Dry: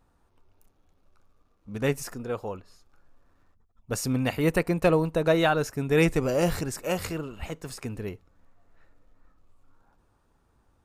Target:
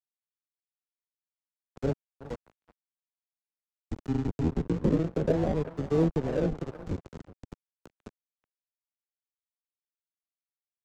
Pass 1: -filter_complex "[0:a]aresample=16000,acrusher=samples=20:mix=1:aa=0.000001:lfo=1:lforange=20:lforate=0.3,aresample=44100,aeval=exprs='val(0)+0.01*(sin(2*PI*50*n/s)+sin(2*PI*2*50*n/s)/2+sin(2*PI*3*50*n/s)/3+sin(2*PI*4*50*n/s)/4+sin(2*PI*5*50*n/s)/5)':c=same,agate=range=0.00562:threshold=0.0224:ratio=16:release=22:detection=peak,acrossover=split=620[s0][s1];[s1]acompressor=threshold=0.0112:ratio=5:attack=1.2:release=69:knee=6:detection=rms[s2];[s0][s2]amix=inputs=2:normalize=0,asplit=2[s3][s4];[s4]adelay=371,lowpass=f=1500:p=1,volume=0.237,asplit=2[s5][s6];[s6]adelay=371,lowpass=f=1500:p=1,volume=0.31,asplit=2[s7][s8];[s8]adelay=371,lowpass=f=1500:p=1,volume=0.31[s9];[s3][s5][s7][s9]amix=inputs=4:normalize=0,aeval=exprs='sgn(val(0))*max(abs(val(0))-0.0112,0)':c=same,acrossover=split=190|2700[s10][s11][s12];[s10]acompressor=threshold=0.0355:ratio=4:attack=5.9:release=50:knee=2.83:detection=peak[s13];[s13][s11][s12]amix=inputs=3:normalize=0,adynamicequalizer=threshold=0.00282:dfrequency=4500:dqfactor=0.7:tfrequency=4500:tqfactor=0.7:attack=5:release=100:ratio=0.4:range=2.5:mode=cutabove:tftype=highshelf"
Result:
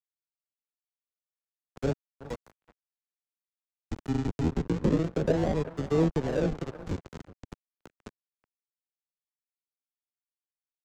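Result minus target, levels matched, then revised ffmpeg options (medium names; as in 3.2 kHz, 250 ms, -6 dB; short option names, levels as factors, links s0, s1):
compression: peak gain reduction -7 dB
-filter_complex "[0:a]aresample=16000,acrusher=samples=20:mix=1:aa=0.000001:lfo=1:lforange=20:lforate=0.3,aresample=44100,aeval=exprs='val(0)+0.01*(sin(2*PI*50*n/s)+sin(2*PI*2*50*n/s)/2+sin(2*PI*3*50*n/s)/3+sin(2*PI*4*50*n/s)/4+sin(2*PI*5*50*n/s)/5)':c=same,agate=range=0.00562:threshold=0.0224:ratio=16:release=22:detection=peak,acrossover=split=620[s0][s1];[s1]acompressor=threshold=0.00398:ratio=5:attack=1.2:release=69:knee=6:detection=rms[s2];[s0][s2]amix=inputs=2:normalize=0,asplit=2[s3][s4];[s4]adelay=371,lowpass=f=1500:p=1,volume=0.237,asplit=2[s5][s6];[s6]adelay=371,lowpass=f=1500:p=1,volume=0.31,asplit=2[s7][s8];[s8]adelay=371,lowpass=f=1500:p=1,volume=0.31[s9];[s3][s5][s7][s9]amix=inputs=4:normalize=0,aeval=exprs='sgn(val(0))*max(abs(val(0))-0.0112,0)':c=same,acrossover=split=190|2700[s10][s11][s12];[s10]acompressor=threshold=0.0355:ratio=4:attack=5.9:release=50:knee=2.83:detection=peak[s13];[s13][s11][s12]amix=inputs=3:normalize=0,adynamicequalizer=threshold=0.00282:dfrequency=4500:dqfactor=0.7:tfrequency=4500:tqfactor=0.7:attack=5:release=100:ratio=0.4:range=2.5:mode=cutabove:tftype=highshelf"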